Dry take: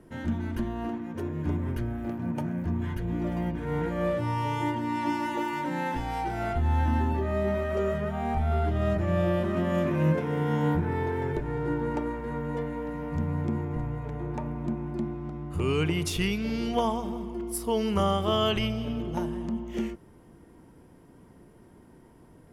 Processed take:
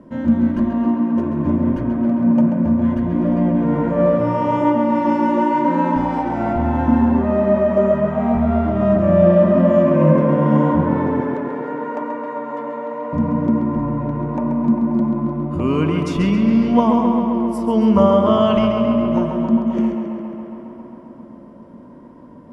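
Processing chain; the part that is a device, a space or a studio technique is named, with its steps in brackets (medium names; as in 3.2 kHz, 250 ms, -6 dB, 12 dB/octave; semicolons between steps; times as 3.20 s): 11.21–13.13 s: high-pass 550 Hz 12 dB/octave; dynamic bell 3.8 kHz, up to -4 dB, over -55 dBFS, Q 2.2; tape echo 135 ms, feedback 85%, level -5 dB, low-pass 4.7 kHz; inside a cardboard box (low-pass 6 kHz 12 dB/octave; small resonant body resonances 240/560/990 Hz, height 16 dB, ringing for 30 ms)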